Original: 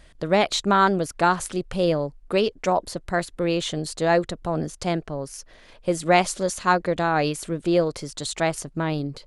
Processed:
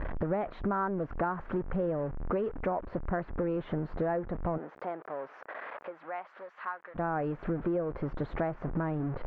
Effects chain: jump at every zero crossing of -27.5 dBFS; low-pass 1.6 kHz 24 dB/octave; compression 6:1, threshold -29 dBFS, peak gain reduction 15 dB; 4.57–6.94 s: high-pass 430 Hz -> 1.4 kHz 12 dB/octave

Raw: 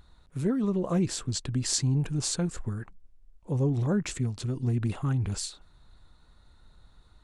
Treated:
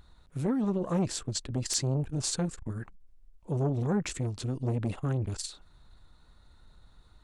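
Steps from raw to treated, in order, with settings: integer overflow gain 13.5 dB; transformer saturation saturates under 440 Hz

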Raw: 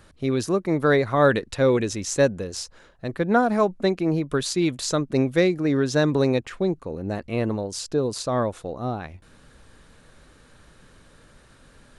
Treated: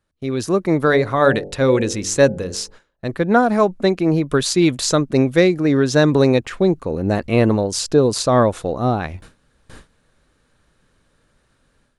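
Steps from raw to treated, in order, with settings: 0.85–3.06 s: de-hum 48.32 Hz, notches 18; gate with hold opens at -39 dBFS; level rider gain up to 13 dB; trim -1 dB

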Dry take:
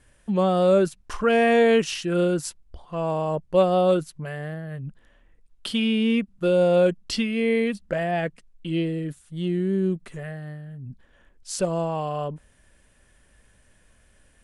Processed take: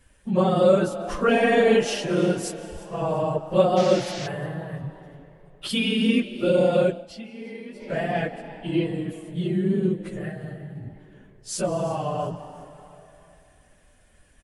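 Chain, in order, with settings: phase randomisation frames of 50 ms; 5.69–6.20 s: treble shelf 5.3 kHz +10 dB; frequency-shifting echo 349 ms, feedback 38%, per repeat +140 Hz, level -20 dB; reverberation RT60 3.1 s, pre-delay 115 ms, DRR 13.5 dB; 3.76–4.26 s: band noise 1.4–6.1 kHz -37 dBFS; 6.81–7.97 s: dip -15.5 dB, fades 0.26 s

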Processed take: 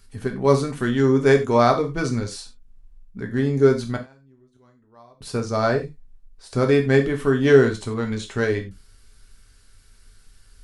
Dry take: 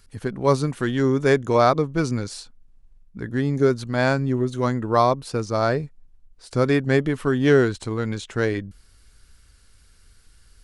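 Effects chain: 3.96–5.21 s: inverted gate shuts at -23 dBFS, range -33 dB; gated-style reverb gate 120 ms falling, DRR 3 dB; trim -1 dB

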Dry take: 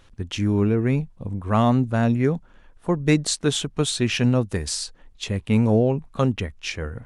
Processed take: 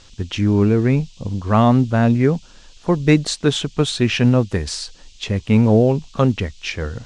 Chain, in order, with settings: block-companded coder 7-bit; band noise 2.7–7.7 kHz -53 dBFS; distance through air 77 m; trim +5 dB

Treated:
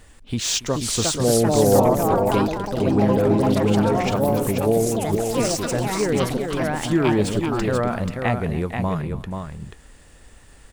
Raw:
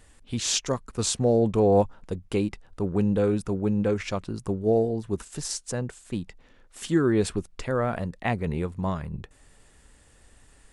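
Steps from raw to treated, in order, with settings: median filter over 3 samples; in parallel at +1 dB: compression, threshold -30 dBFS, peak gain reduction 14 dB; on the sum: multi-tap echo 282/484 ms -19/-6 dB; ever faster or slower copies 501 ms, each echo +4 st, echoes 3

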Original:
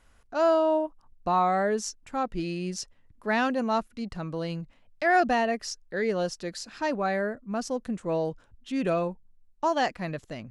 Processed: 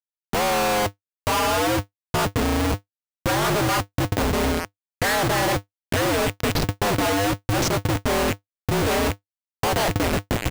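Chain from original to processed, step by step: rattle on loud lows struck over -47 dBFS, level -27 dBFS; low-pass sweep 1.2 kHz -> 6.4 kHz, 4.00–7.70 s; Schmitt trigger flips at -31 dBFS; resampled via 32 kHz; polarity switched at an audio rate 100 Hz; trim +5.5 dB

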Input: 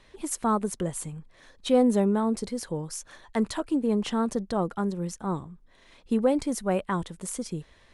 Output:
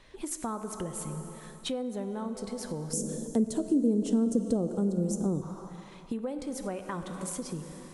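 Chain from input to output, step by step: plate-style reverb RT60 2.8 s, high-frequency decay 0.9×, DRR 8.5 dB; compression 6:1, threshold -32 dBFS, peak gain reduction 15.5 dB; 2.93–5.42 s: graphic EQ 125/250/500/1000/2000/4000/8000 Hz +6/+9/+8/-10/-12/-5/+9 dB

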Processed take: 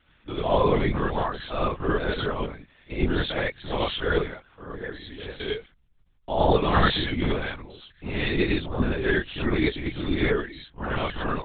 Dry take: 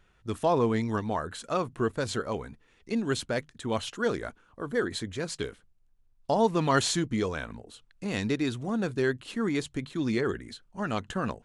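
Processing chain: treble shelf 2.4 kHz +9 dB; 4.19–5.31 s: compression 6:1, threshold -36 dBFS, peak gain reduction 14 dB; gated-style reverb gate 120 ms rising, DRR -7.5 dB; LPC vocoder at 8 kHz whisper; trim -4.5 dB

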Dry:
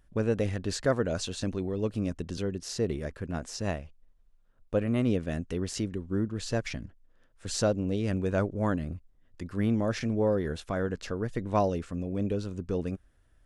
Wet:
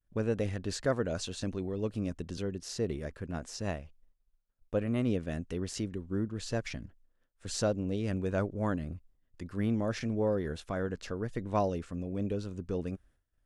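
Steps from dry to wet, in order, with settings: expander -53 dBFS; trim -3.5 dB

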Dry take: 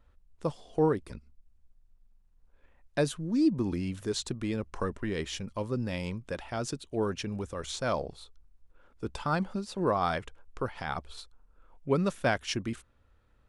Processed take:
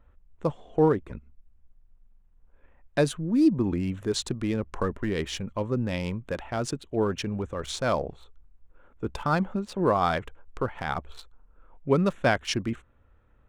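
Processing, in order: local Wiener filter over 9 samples; trim +4.5 dB

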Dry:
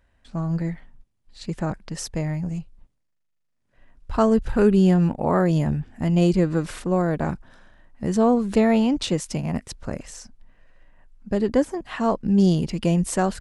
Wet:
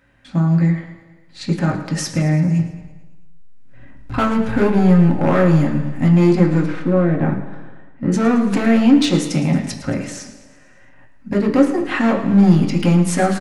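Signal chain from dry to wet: 2.59–4.17 s: bass shelf 280 Hz +11 dB; in parallel at +2 dB: compression 6:1, threshold -26 dBFS, peak gain reduction 13 dB; on the sum: hard clipper -13.5 dBFS, distortion -12 dB; 6.66–8.12 s: tape spacing loss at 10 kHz 30 dB; feedback delay 111 ms, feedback 57%, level -14.5 dB; reverberation RT60 1.2 s, pre-delay 3 ms, DRR 1 dB; trim -1 dB

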